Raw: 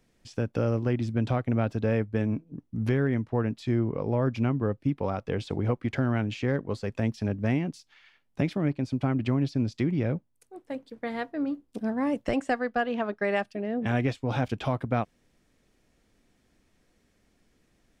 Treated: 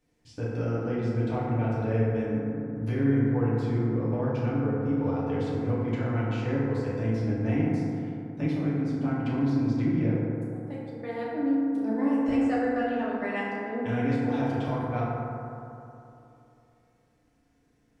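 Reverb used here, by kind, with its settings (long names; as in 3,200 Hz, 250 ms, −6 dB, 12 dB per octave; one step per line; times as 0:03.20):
feedback delay network reverb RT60 2.9 s, high-frequency decay 0.3×, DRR −8.5 dB
level −10.5 dB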